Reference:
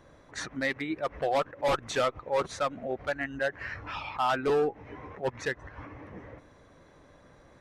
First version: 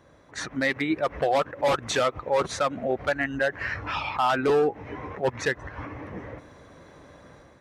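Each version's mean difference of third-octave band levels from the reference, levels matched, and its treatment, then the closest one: 2.0 dB: high-pass 48 Hz; level rider gain up to 7.5 dB; peak limiter -15 dBFS, peak gain reduction 6 dB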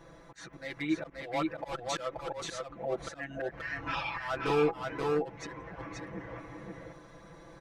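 7.0 dB: slow attack 431 ms; comb 6 ms, depth 95%; on a send: delay 530 ms -3 dB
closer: first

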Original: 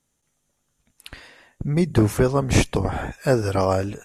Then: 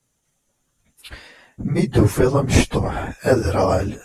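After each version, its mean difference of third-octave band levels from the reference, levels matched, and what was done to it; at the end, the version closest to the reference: 2.0 dB: phase randomisation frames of 50 ms; trim +2.5 dB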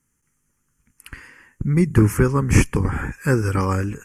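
3.5 dB: static phaser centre 1.6 kHz, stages 4; trim +4.5 dB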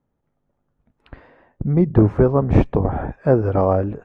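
7.5 dB: low-pass 1 kHz 12 dB/octave; trim +4 dB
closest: first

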